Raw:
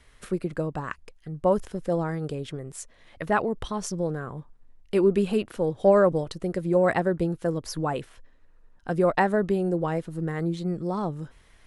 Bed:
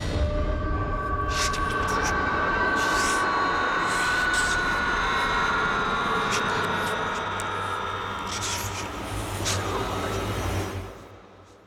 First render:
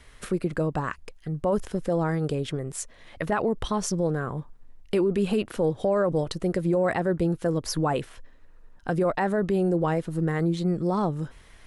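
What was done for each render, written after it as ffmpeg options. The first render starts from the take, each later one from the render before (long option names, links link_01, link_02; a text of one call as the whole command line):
ffmpeg -i in.wav -filter_complex "[0:a]asplit=2[link_01][link_02];[link_02]acompressor=threshold=-28dB:ratio=6,volume=-2dB[link_03];[link_01][link_03]amix=inputs=2:normalize=0,alimiter=limit=-16dB:level=0:latency=1:release=18" out.wav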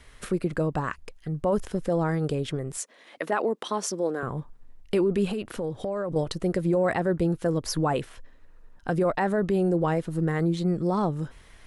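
ffmpeg -i in.wav -filter_complex "[0:a]asettb=1/sr,asplit=3[link_01][link_02][link_03];[link_01]atrim=end=2.774[link_04];[link_02]atrim=start=2.77:end=4.23,asetpts=PTS-STARTPTS,afade=type=in:duration=0.004:curve=qsin,afade=type=out:start_time=1.456:duration=0.004:curve=qsin,highpass=frequency=250:width=0.5412,highpass=frequency=250:width=1.3066[link_05];[link_03]atrim=start=4.226[link_06];[link_04][link_05]acrossfade=duration=0.004:curve1=hsin:curve2=qsin[link_07];[link_07][link_06]acrossfade=duration=0.004:curve1=qsin:curve2=hsin,asettb=1/sr,asplit=3[link_08][link_09][link_10];[link_08]atrim=end=5.284[link_11];[link_09]atrim=start=5.28:end=6.16,asetpts=PTS-STARTPTS,afade=type=in:duration=0.004:curve=qsin,afade=type=out:start_time=0.876:duration=0.004:curve=qsin,acompressor=threshold=-26dB:ratio=6:attack=3.2:release=140:knee=1:detection=peak[link_12];[link_10]atrim=start=6.156[link_13];[link_11][link_12]acrossfade=duration=0.004:curve1=hsin:curve2=qsin[link_14];[link_14][link_13]acrossfade=duration=0.004:curve1=qsin:curve2=hsin" out.wav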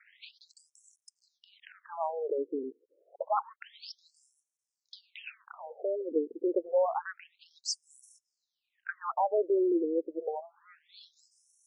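ffmpeg -i in.wav -af "aeval=exprs='sgn(val(0))*max(abs(val(0))-0.00112,0)':channel_layout=same,afftfilt=real='re*between(b*sr/1024,350*pow(7800/350,0.5+0.5*sin(2*PI*0.28*pts/sr))/1.41,350*pow(7800/350,0.5+0.5*sin(2*PI*0.28*pts/sr))*1.41)':imag='im*between(b*sr/1024,350*pow(7800/350,0.5+0.5*sin(2*PI*0.28*pts/sr))/1.41,350*pow(7800/350,0.5+0.5*sin(2*PI*0.28*pts/sr))*1.41)':win_size=1024:overlap=0.75" out.wav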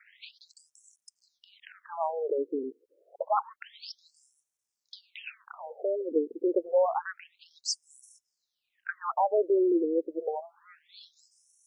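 ffmpeg -i in.wav -af "volume=2.5dB" out.wav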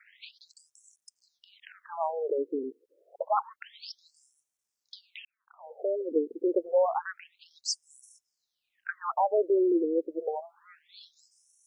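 ffmpeg -i in.wav -filter_complex "[0:a]asplit=2[link_01][link_02];[link_01]atrim=end=5.25,asetpts=PTS-STARTPTS,afade=type=out:start_time=5.246:duration=0.004:curve=hsin[link_03];[link_02]atrim=start=5.25,asetpts=PTS-STARTPTS,afade=type=in:duration=0.56:curve=qua[link_04];[link_03][link_04]concat=n=2:v=0:a=1" out.wav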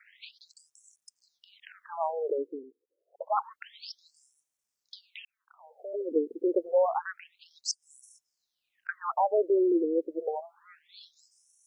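ffmpeg -i in.wav -filter_complex "[0:a]asplit=3[link_01][link_02][link_03];[link_01]afade=type=out:start_time=5.07:duration=0.02[link_04];[link_02]highpass=990,afade=type=in:start_time=5.07:duration=0.02,afade=type=out:start_time=5.93:duration=0.02[link_05];[link_03]afade=type=in:start_time=5.93:duration=0.02[link_06];[link_04][link_05][link_06]amix=inputs=3:normalize=0,asettb=1/sr,asplit=3[link_07][link_08][link_09];[link_07]atrim=end=7.714[link_10];[link_08]atrim=start=7.71:end=8.89,asetpts=PTS-STARTPTS,afade=type=in:duration=0.004:curve=qsin,afade=type=out:start_time=1.176:duration=0.004:curve=qsin,acompressor=threshold=-48dB:ratio=6:attack=3.2:release=140:knee=1:detection=peak[link_11];[link_09]atrim=start=8.886[link_12];[link_10][link_11]acrossfade=duration=0.004:curve1=hsin:curve2=qsin[link_13];[link_13][link_12]acrossfade=duration=0.004:curve1=qsin:curve2=hsin,asplit=3[link_14][link_15][link_16];[link_14]atrim=end=2.66,asetpts=PTS-STARTPTS,afade=type=out:start_time=2.31:duration=0.35:silence=0.177828[link_17];[link_15]atrim=start=2.66:end=3.06,asetpts=PTS-STARTPTS,volume=-15dB[link_18];[link_16]atrim=start=3.06,asetpts=PTS-STARTPTS,afade=type=in:duration=0.35:silence=0.177828[link_19];[link_17][link_18][link_19]concat=n=3:v=0:a=1" out.wav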